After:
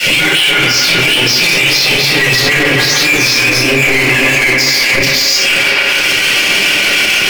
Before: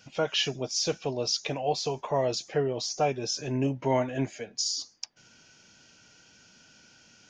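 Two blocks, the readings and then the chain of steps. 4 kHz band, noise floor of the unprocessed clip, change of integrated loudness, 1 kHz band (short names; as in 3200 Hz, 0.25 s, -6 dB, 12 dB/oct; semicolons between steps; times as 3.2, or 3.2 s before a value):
+24.0 dB, -59 dBFS, +21.0 dB, +14.0 dB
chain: reverse delay 0.383 s, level -3.5 dB; reverb removal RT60 0.54 s; expander -50 dBFS; elliptic band-stop 190–2100 Hz, stop band 40 dB; three-band isolator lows -17 dB, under 250 Hz, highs -21 dB, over 3300 Hz; power-law curve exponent 0.35; auto swell 0.461 s; rotary speaker horn 6.7 Hz; resonant low shelf 250 Hz -11 dB, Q 3; band-limited delay 0.136 s, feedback 75%, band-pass 1100 Hz, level -3 dB; shoebox room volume 560 m³, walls furnished, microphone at 7 m; maximiser +29 dB; gain -1 dB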